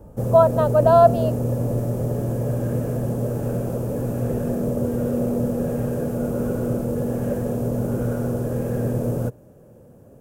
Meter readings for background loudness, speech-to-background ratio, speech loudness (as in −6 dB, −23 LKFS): −24.5 LKFS, 7.5 dB, −17.0 LKFS